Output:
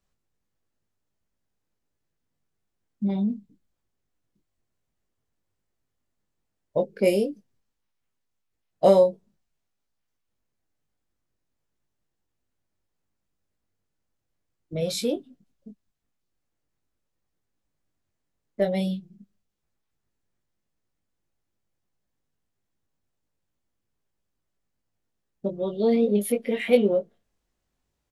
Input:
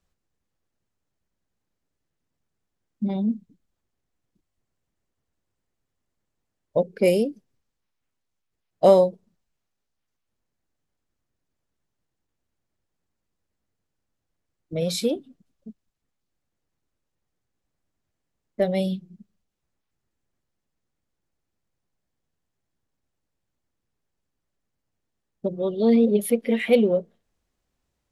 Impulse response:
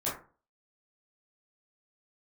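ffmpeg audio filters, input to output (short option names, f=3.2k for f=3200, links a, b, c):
-filter_complex "[0:a]asplit=2[a][b];[b]adelay=20,volume=-5dB[c];[a][c]amix=inputs=2:normalize=0,volume=-2.5dB"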